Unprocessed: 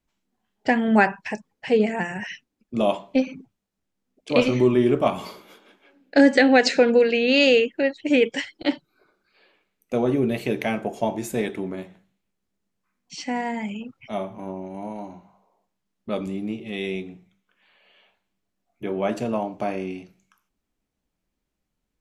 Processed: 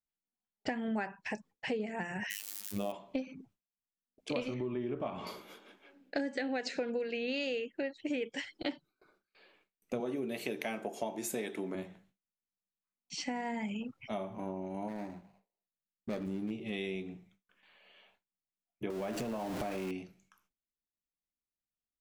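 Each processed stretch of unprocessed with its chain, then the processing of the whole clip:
0:02.30–0:02.92: spike at every zero crossing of −24.5 dBFS + phases set to zero 101 Hz
0:04.54–0:05.27: low-pass filter 3,200 Hz + downward compressor 1.5 to 1, threshold −24 dBFS
0:10.00–0:11.75: high-pass filter 220 Hz + high-shelf EQ 4,000 Hz +6 dB
0:14.88–0:16.51: running median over 41 samples + high-shelf EQ 8,600 Hz +4.5 dB
0:18.90–0:19.91: converter with a step at zero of −29 dBFS + downward compressor 2.5 to 1, threshold −29 dBFS
whole clip: noise gate with hold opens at −54 dBFS; downward compressor 6 to 1, threshold −30 dBFS; level −3.5 dB

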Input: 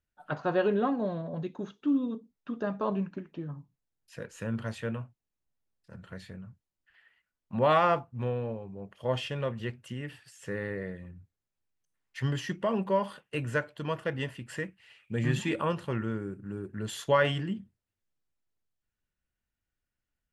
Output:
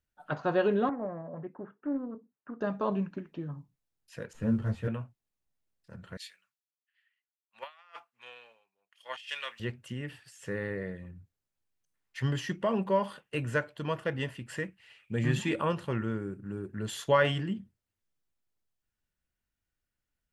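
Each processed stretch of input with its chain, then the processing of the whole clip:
0:00.89–0:02.61: elliptic band-pass filter 110–1,700 Hz + low-shelf EQ 490 Hz −7 dB + highs frequency-modulated by the lows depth 0.31 ms
0:04.33–0:04.88: variable-slope delta modulation 64 kbit/s + spectral tilt −3.5 dB per octave + string-ensemble chorus
0:06.17–0:09.60: Chebyshev high-pass filter 2,300 Hz + compressor whose output falls as the input rises −44 dBFS, ratio −0.5 + multiband upward and downward expander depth 100%
whole clip: no processing

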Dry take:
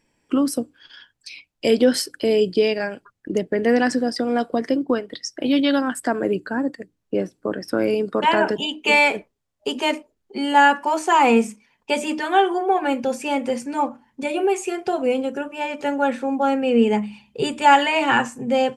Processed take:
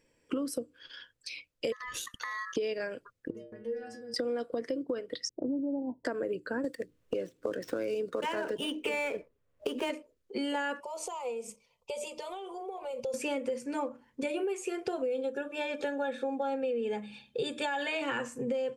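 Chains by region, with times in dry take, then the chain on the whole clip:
0:01.72–0:02.56: ring modulation 1,500 Hz + downward compressor 16 to 1, threshold −28 dBFS
0:03.30–0:04.14: low-shelf EQ 270 Hz +11.5 dB + downward compressor 8 to 1, threshold −22 dBFS + stiff-string resonator 110 Hz, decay 0.64 s, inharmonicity 0.008
0:05.29–0:06.05: low-pass that shuts in the quiet parts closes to 440 Hz, open at −18 dBFS + linear-phase brick-wall low-pass 1,000 Hz + parametric band 510 Hz −9.5 dB 0.54 octaves
0:06.64–0:09.90: running median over 9 samples + multiband upward and downward compressor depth 70%
0:10.80–0:13.14: downward compressor 20 to 1, threshold −27 dBFS + phaser with its sweep stopped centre 690 Hz, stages 4
0:15.07–0:18.02: parametric band 3,700 Hz +14.5 dB 0.22 octaves + notch comb filter 990 Hz + hollow resonant body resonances 820/1,700 Hz, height 13 dB, ringing for 85 ms
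whole clip: thirty-one-band graphic EQ 200 Hz −6 dB, 500 Hz +10 dB, 800 Hz −9 dB; brickwall limiter −10.5 dBFS; downward compressor 6 to 1, threshold −27 dBFS; level −3.5 dB

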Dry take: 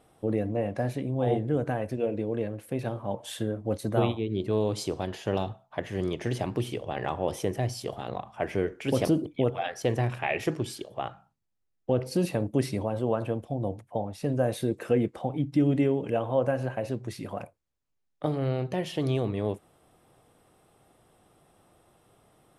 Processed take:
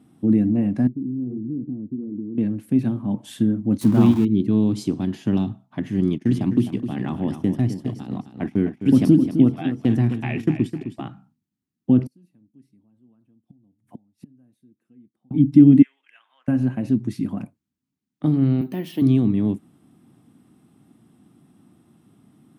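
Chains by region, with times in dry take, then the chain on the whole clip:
0:00.87–0:02.38: mu-law and A-law mismatch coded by A + transistor ladder low-pass 420 Hz, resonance 45% + downward compressor 2.5 to 1, threshold −38 dBFS
0:03.81–0:04.25: converter with a step at zero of −31.5 dBFS + parametric band 1,000 Hz +7 dB 0.56 octaves
0:06.01–0:11.02: notch filter 6,100 Hz, Q 28 + noise gate −37 dBFS, range −22 dB + repeating echo 259 ms, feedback 30%, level −10 dB
0:12.06–0:15.31: high-shelf EQ 7,300 Hz +8.5 dB + gate with flip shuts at −32 dBFS, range −39 dB
0:15.82–0:16.48: four-pole ladder high-pass 1,600 Hz, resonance 50% + high-shelf EQ 5,200 Hz −9 dB
0:18.61–0:19.02: high-pass filter 290 Hz + bad sample-rate conversion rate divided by 3×, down filtered, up hold
whole clip: high-pass filter 140 Hz 12 dB per octave; low shelf with overshoot 360 Hz +12 dB, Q 3; level −1.5 dB

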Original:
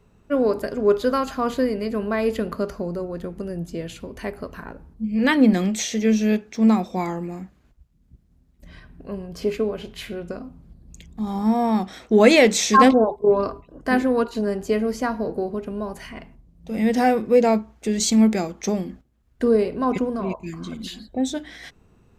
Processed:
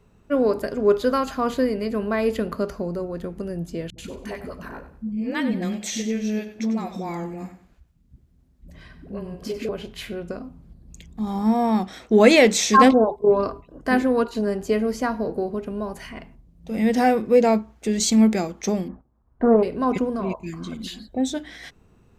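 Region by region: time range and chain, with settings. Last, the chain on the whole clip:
0:03.90–0:09.69: downward compressor 2 to 1, threshold −28 dBFS + all-pass dispersion highs, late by 83 ms, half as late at 370 Hz + repeating echo 94 ms, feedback 29%, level −12 dB
0:18.88–0:19.63: low-pass with resonance 1,000 Hz, resonance Q 2.6 + highs frequency-modulated by the lows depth 0.33 ms
whole clip: no processing

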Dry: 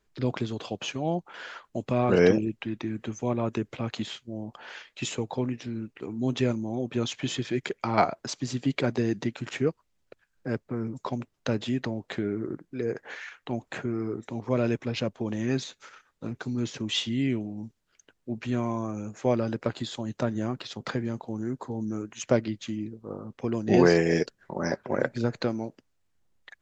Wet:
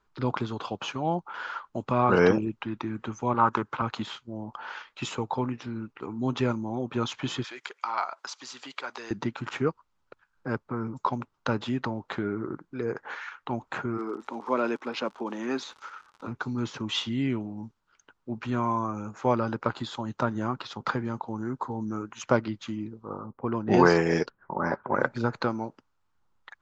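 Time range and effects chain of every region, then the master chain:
0:03.34–0:03.82: high-pass filter 88 Hz + flat-topped bell 1,200 Hz +8.5 dB 1.2 octaves + highs frequency-modulated by the lows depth 0.26 ms
0:07.44–0:09.11: high-pass filter 610 Hz + high-shelf EQ 2,000 Hz +10 dB + downward compressor 2 to 1, threshold −41 dBFS
0:13.97–0:16.26: high-pass filter 240 Hz 24 dB per octave + surface crackle 110 per second −40 dBFS
0:23.26–0:24.94: low-pass that shuts in the quiet parts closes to 620 Hz, open at −17.5 dBFS + high-shelf EQ 6,300 Hz +4 dB
whole clip: low-pass filter 6,000 Hz 12 dB per octave; flat-topped bell 1,100 Hz +10.5 dB 1 octave; level −1 dB

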